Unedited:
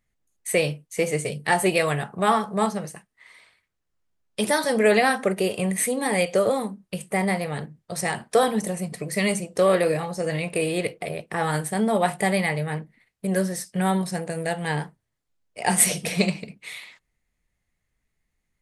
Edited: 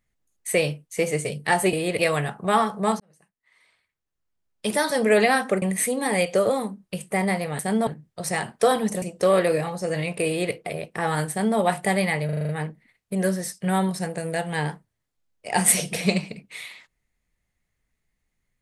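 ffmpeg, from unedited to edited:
-filter_complex "[0:a]asplit=14[a][b][c][d][e][f][g][h][i][j][k][l][m][n];[a]atrim=end=1.732[o];[b]atrim=start=10.628:end=10.892[p];[c]atrim=start=1.728:end=2.74,asetpts=PTS-STARTPTS,afade=t=out:st=1.008:d=0.004:c=hsin[q];[d]atrim=start=2.74:end=5.362,asetpts=PTS-STARTPTS,afade=t=in:d=1.96[r];[e]atrim=start=5.618:end=7.592[s];[f]atrim=start=11.658:end=11.942[t];[g]atrim=start=7.588:end=8.742[u];[h]atrim=start=9.378:end=12.652[v];[i]atrim=start=12.608:end=12.652[w];[j]atrim=start=12.608:end=12.652[x];[k]atrim=start=12.608:end=12.652[y];[l]atrim=start=12.608:end=12.652[z];[m]atrim=start=12.608:end=12.652[aa];[n]atrim=start=12.608[ab];[o][p]acrossfade=d=0.004:c1=hsin:c2=hsin[ac];[q][r]concat=n=2:v=0:a=1[ad];[ac][ad]acrossfade=d=0.004:c1=hsin:c2=hsin[ae];[ae][s]acrossfade=d=0.004:c1=hsin:c2=hsin[af];[af][t]acrossfade=d=0.004:c1=hsin:c2=hsin[ag];[ag][u]acrossfade=d=0.004:c1=hsin:c2=hsin[ah];[ah][v]acrossfade=d=0.004:c1=hsin:c2=hsin[ai];[ai][w]acrossfade=d=0.004:c1=hsin:c2=hsin[aj];[aj][x]acrossfade=d=0.004:c1=hsin:c2=hsin[ak];[ak][y]acrossfade=d=0.004:c1=hsin:c2=hsin[al];[al][z]acrossfade=d=0.004:c1=hsin:c2=hsin[am];[am][aa]acrossfade=d=0.004:c1=hsin:c2=hsin[an];[an][ab]acrossfade=d=0.004:c1=hsin:c2=hsin"

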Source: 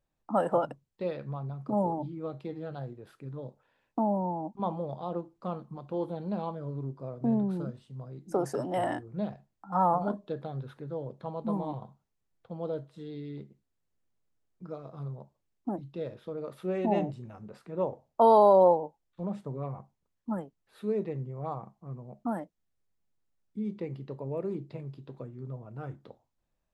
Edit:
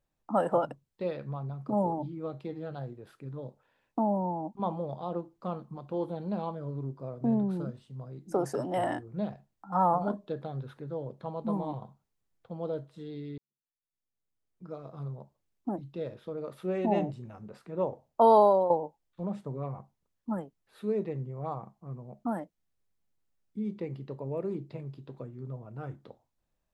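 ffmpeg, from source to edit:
-filter_complex "[0:a]asplit=3[a][b][c];[a]atrim=end=13.38,asetpts=PTS-STARTPTS,afade=t=out:st=13.376:d=0.004:c=hsin[d];[b]atrim=start=13.38:end=18.7,asetpts=PTS-STARTPTS,afade=t=in:d=1.44:c=qua,afade=t=out:st=5.01:d=0.31:silence=0.266073[e];[c]atrim=start=18.7,asetpts=PTS-STARTPTS,afade=t=in:d=0.004:c=hsin:silence=0.266073[f];[d][e][f]concat=n=3:v=0:a=1"

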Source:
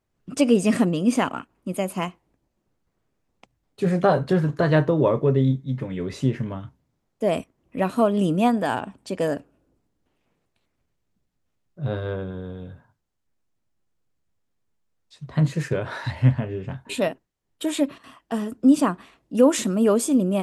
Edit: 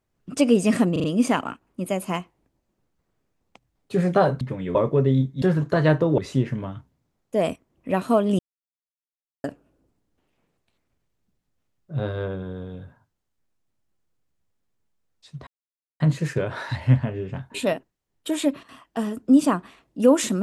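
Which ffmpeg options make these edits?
-filter_complex "[0:a]asplit=11[a][b][c][d][e][f][g][h][i][j][k];[a]atrim=end=0.962[l];[b]atrim=start=0.918:end=0.962[m];[c]atrim=start=0.918:end=0.962[n];[d]atrim=start=0.918:end=4.292[o];[e]atrim=start=5.718:end=6.062[p];[f]atrim=start=5.048:end=5.722[q];[g]atrim=start=4.288:end=5.052[r];[h]atrim=start=6.058:end=8.27,asetpts=PTS-STARTPTS,afade=t=out:st=2.208:d=0.004:c=hsin[s];[i]atrim=start=8.27:end=9.32,asetpts=PTS-STARTPTS,volume=0[t];[j]atrim=start=9.32:end=15.35,asetpts=PTS-STARTPTS,afade=t=in:d=0.004:c=hsin,afade=t=out:st=6.026:d=0.004:c=hsin,apad=pad_dur=0.53[u];[k]atrim=start=15.35,asetpts=PTS-STARTPTS,afade=t=in:d=0.004:c=hsin[v];[l][m]acrossfade=d=0.004:c1=hsin:c2=hsin[w];[w][n]acrossfade=d=0.004:c1=hsin:c2=hsin[x];[x][o]acrossfade=d=0.004:c1=hsin:c2=hsin[y];[y][p]acrossfade=d=0.004:c1=hsin:c2=hsin[z];[z][q]acrossfade=d=0.004:c1=hsin:c2=hsin[aa];[aa][r]acrossfade=d=0.004:c1=hsin:c2=hsin[ab];[s][t][u][v]concat=n=4:v=0:a=1[ac];[ab][ac]acrossfade=d=0.004:c1=hsin:c2=hsin"

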